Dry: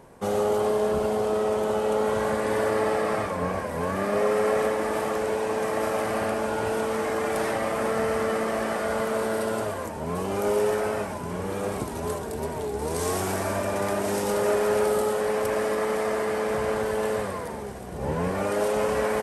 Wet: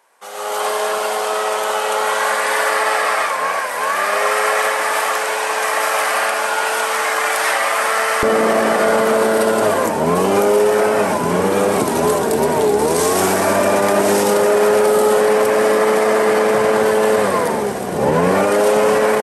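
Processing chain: HPF 1100 Hz 12 dB/oct, from 8.23 s 190 Hz; limiter -22.5 dBFS, peak gain reduction 9 dB; AGC gain up to 16.5 dB; speakerphone echo 80 ms, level -24 dB

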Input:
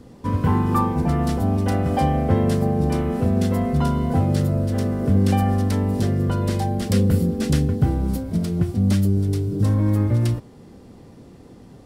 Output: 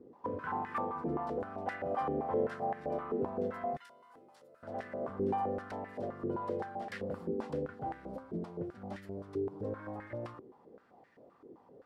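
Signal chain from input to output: 3.77–4.63 differentiator; in parallel at -6.5 dB: hard clip -19.5 dBFS, distortion -9 dB; on the sum: stepped band-pass 7.7 Hz 390–1800 Hz; gain -4 dB

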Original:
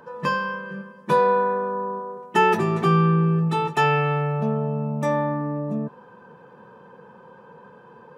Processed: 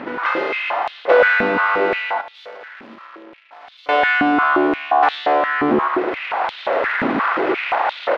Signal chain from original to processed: per-bin compression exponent 0.6; in parallel at 0 dB: compressor, threshold -27 dBFS, peak gain reduction 13.5 dB; on the sum: full-wave rectifier; on a send: feedback echo 0.112 s, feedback 34%, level -6.5 dB; on the sum: AGC gain up to 11 dB; 2.21–3.89 tube stage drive 16 dB, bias 0.6; air absorption 320 m; echo 0.555 s -20 dB; stepped high-pass 5.7 Hz 250–3600 Hz

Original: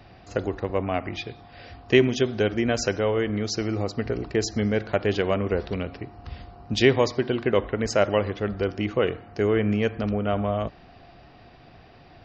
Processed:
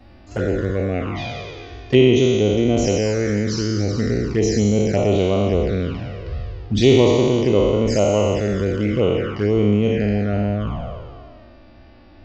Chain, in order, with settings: spectral trails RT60 2.30 s; low shelf 380 Hz +8.5 dB; envelope flanger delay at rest 3.9 ms, full sweep at -11.5 dBFS; gain -1 dB

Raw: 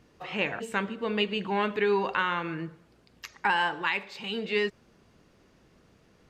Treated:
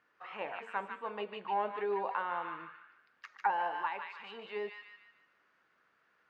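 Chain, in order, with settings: thin delay 0.149 s, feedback 35%, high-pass 1500 Hz, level -3.5 dB; auto-wah 650–1500 Hz, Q 2.6, down, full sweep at -21.5 dBFS

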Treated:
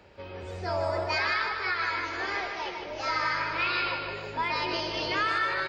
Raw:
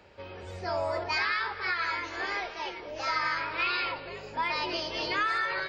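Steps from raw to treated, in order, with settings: low shelf 410 Hz +3 dB; feedback echo 0.153 s, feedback 51%, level -6.5 dB

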